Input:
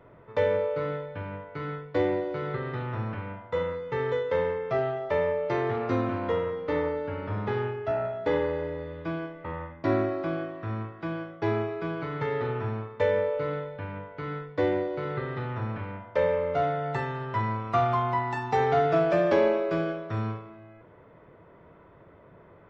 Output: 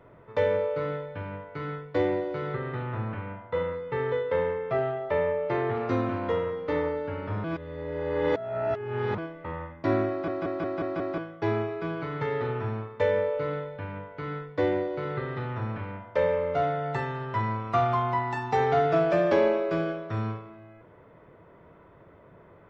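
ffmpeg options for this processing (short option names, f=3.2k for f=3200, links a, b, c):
-filter_complex "[0:a]asettb=1/sr,asplit=3[a][b][c];[a]atrim=end=2.544[d];[b]atrim=start=2.54:end=5.76,asetpts=PTS-STARTPTS,afade=t=in:d=0.004:c=qsin,afade=t=out:st=3.216:d=0.004:c=qsin,lowpass=3.5k[e];[c]atrim=start=5.756[f];[d][e]acrossfade=d=0.004:c1=hsin:c2=qsin[g];[g][f]acrossfade=d=0.004:c1=qsin:c2=hsin,asplit=9[h][i][j][k][l][m][n][o][p];[h]atrim=end=7.442[q];[i]atrim=start=7.438:end=9.182,asetpts=PTS-STARTPTS,areverse[r];[j]atrim=start=9.178:end=10.282[s];[k]atrim=start=10.098:end=10.282[t];[l]atrim=start=10.098:end=10.282[u];[m]atrim=start=10.098:end=10.282[v];[n]atrim=start=10.098:end=10.282[w];[o]atrim=start=10.098:end=10.282[x];[p]atrim=start=11.178[y];[q][r]acrossfade=d=0.004:c1=hsin:c2=hsin[z];[z][s]acrossfade=d=0.004:c1=hsin:c2=hsin[aa];[aa][t]acrossfade=d=0.004:c1=hsin:c2=hsin[ab];[ab][u]acrossfade=d=0.004:c1=hsin:c2=hsin[ac];[ac][v]acrossfade=d=0.004:c1=hsin:c2=hsin[ad];[ad][w]acrossfade=d=0.004:c1=hsin:c2=hsin[ae];[ae][x]acrossfade=d=0.004:c1=hsin:c2=hsin[af];[af][y]acrossfade=d=0.004:c1=hsin:c2=hsin"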